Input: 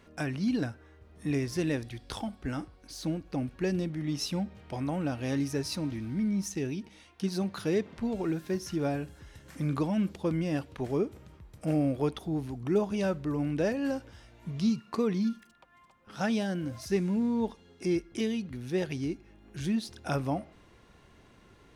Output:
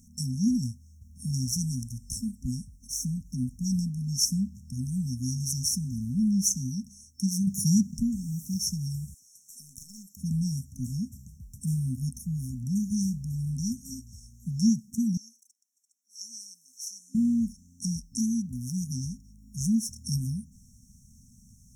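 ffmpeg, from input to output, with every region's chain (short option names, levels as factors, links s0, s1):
-filter_complex "[0:a]asettb=1/sr,asplit=3[s0][s1][s2];[s0]atrim=end=7.474[s3];[s1]atrim=start=7.47:end=8.03,asetpts=PTS-STARTPTS,afade=t=in:d=0.004:c=qsin,afade=t=out:st=0.556:d=0.004:c=qsin,aecho=1:1:5.5:0.31,atrim=end_sample=24696,acontrast=60[s4];[s2]atrim=start=8.026[s5];[s3][s4]acrossfade=d=0.004:c1=hsin:c2=qsin[s6];[s6][s5]acrossfade=d=0.004:c1=qsin:c2=hsin,asettb=1/sr,asplit=3[s7][s8][s9];[s7]atrim=end=9.144[s10];[s8]atrim=start=9.14:end=10.17,asetpts=PTS-STARTPTS,afade=t=in:d=0.004:c=qsin,afade=t=out:st=1.026:d=0.004:c=qsin,highpass=720,aeval=exprs='(tanh(35.5*val(0)+0.6)-tanh(0.6))/35.5':c=same,aeval=exprs='0.0133*(abs(mod(val(0)/0.0133+3,4)-2)-1)':c=same[s11];[s9]atrim=start=10.166[s12];[s10][s11]acrossfade=d=0.004:c1=hsin:c2=qsin[s13];[s13][s12]acrossfade=d=0.004:c1=qsin:c2=hsin,asettb=1/sr,asplit=3[s14][s15][s16];[s14]atrim=end=15.174[s17];[s15]atrim=start=15.17:end=17.15,asetpts=PTS-STARTPTS,afade=t=in:d=0.004:c=qsin,afade=t=out:st=1.976:d=0.004:c=qsin,highpass=f=640:w=0.5412,highpass=f=640:w=1.3066,highshelf=f=7900:g=-12[s18];[s16]atrim=start=17.146[s19];[s17][s18]acrossfade=d=0.004:c1=hsin:c2=qsin[s20];[s20][s19]acrossfade=d=0.004:c1=qsin:c2=hsin,equalizer=f=2100:w=0.4:g=-5,afftfilt=real='re*(1-between(b*sr/4096,260,5400))':imag='im*(1-between(b*sr/4096,260,5400))':win_size=4096:overlap=0.75,highshelf=f=2800:t=q:w=3:g=9.5,volume=1.78"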